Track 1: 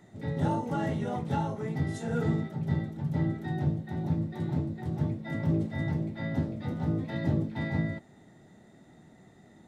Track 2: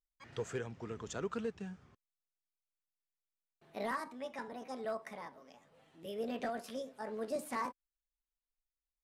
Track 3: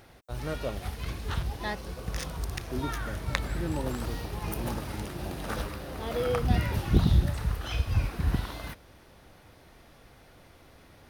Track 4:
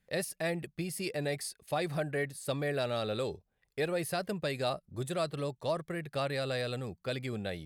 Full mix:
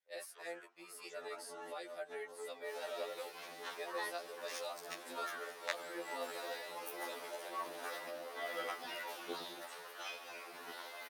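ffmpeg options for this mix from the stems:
-filter_complex "[0:a]adelay=800,volume=-8.5dB[a];[1:a]equalizer=f=1.3k:t=o:w=0.96:g=9.5,volume=-13.5dB[b];[2:a]adelay=2350,volume=-5dB[c];[3:a]volume=-9.5dB,asplit=2[d][e];[e]apad=whole_len=461741[f];[a][f]sidechaincompress=threshold=-47dB:ratio=8:attack=8.1:release=112[g];[g][b][c][d]amix=inputs=4:normalize=0,highpass=f=440:w=0.5412,highpass=f=440:w=1.3066,afftfilt=real='re*2*eq(mod(b,4),0)':imag='im*2*eq(mod(b,4),0)':win_size=2048:overlap=0.75"

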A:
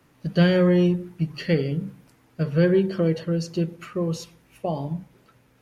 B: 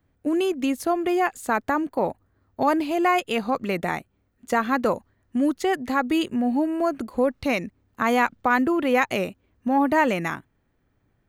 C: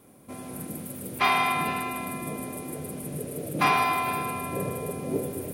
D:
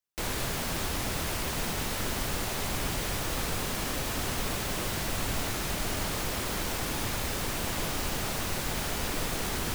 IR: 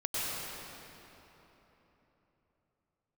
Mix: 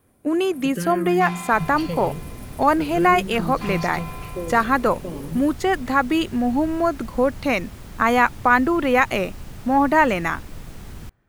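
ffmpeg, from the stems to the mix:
-filter_complex "[0:a]acompressor=threshold=-23dB:ratio=6,asplit=2[a][b];[b]afreqshift=-0.46[c];[a][c]amix=inputs=2:normalize=1,adelay=400,volume=0.5dB[d];[1:a]equalizer=f=1.3k:w=1:g=4.5,volume=1.5dB[e];[2:a]asoftclip=type=tanh:threshold=-22.5dB,volume=-8dB[f];[3:a]acrossover=split=3000[g][h];[h]acompressor=threshold=-46dB:ratio=4:attack=1:release=60[i];[g][i]amix=inputs=2:normalize=0,bass=f=250:g=12,treble=f=4k:g=9,adelay=1350,volume=-12.5dB[j];[d][e][f][j]amix=inputs=4:normalize=0"

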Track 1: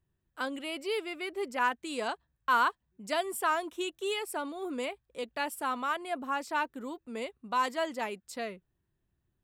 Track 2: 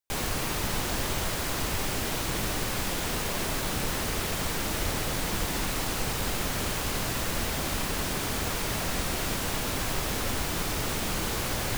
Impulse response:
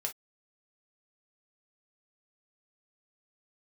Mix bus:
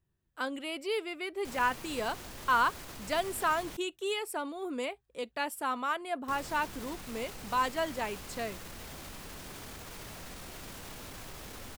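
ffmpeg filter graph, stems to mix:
-filter_complex "[0:a]volume=-1dB,asplit=2[a][b];[b]volume=-21dB[c];[1:a]alimiter=level_in=0.5dB:limit=-24dB:level=0:latency=1:release=22,volume=-0.5dB,adelay=1350,volume=-11.5dB,asplit=3[d][e][f];[d]atrim=end=3.77,asetpts=PTS-STARTPTS,afade=t=out:st=3.766:d=0.004:c=hsin[g];[e]atrim=start=3.77:end=6.28,asetpts=PTS-STARTPTS,volume=0[h];[f]atrim=start=6.28,asetpts=PTS-STARTPTS,afade=t=in:d=0.004:c=hsin[i];[g][h][i]concat=n=3:v=0:a=1[j];[2:a]atrim=start_sample=2205[k];[c][k]afir=irnorm=-1:irlink=0[l];[a][j][l]amix=inputs=3:normalize=0"

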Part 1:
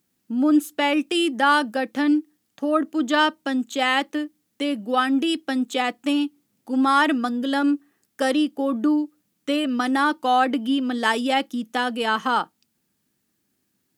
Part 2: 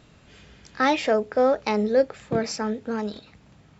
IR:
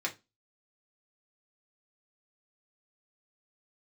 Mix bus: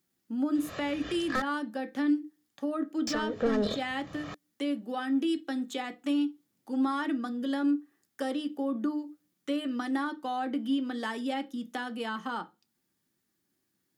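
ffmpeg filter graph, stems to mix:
-filter_complex "[0:a]volume=-9dB,asplit=3[a][b][c];[b]volume=-6dB[d];[1:a]aecho=1:1:1.7:0.65,asplit=2[e][f];[f]highpass=f=720:p=1,volume=25dB,asoftclip=type=tanh:threshold=-12.5dB[g];[e][g]amix=inputs=2:normalize=0,lowpass=f=3.1k:p=1,volume=-6dB,adelay=550,volume=3dB,asplit=3[h][i][j];[h]atrim=end=1.42,asetpts=PTS-STARTPTS,afade=t=out:st=1.416:d=0.004:c=hsin[k];[i]atrim=start=1.42:end=3.07,asetpts=PTS-STARTPTS,volume=0[l];[j]atrim=start=3.07,asetpts=PTS-STARTPTS,afade=t=in:d=0.004:c=hsin[m];[k][l][m]concat=n=3:v=0:a=1[n];[c]apad=whole_len=191556[o];[n][o]sidechaincompress=threshold=-33dB:ratio=8:attack=9.8:release=267[p];[2:a]atrim=start_sample=2205[q];[d][q]afir=irnorm=-1:irlink=0[r];[a][p][r]amix=inputs=3:normalize=0,equalizer=f=2.5k:w=4.8:g=-4.5,acrossover=split=350[s][t];[t]acompressor=threshold=-40dB:ratio=2[u];[s][u]amix=inputs=2:normalize=0"

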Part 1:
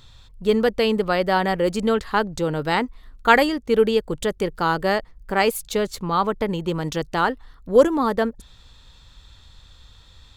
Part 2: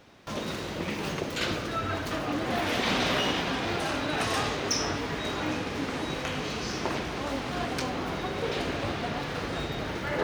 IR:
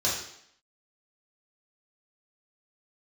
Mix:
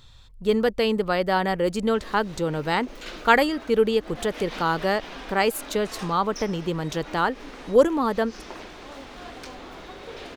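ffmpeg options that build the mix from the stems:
-filter_complex "[0:a]volume=-2.5dB,asplit=2[a][b];[1:a]highpass=240,adelay=1650,volume=-8dB[c];[b]apad=whole_len=523945[d];[c][d]sidechaincompress=threshold=-31dB:ratio=8:attack=30:release=113[e];[a][e]amix=inputs=2:normalize=0"

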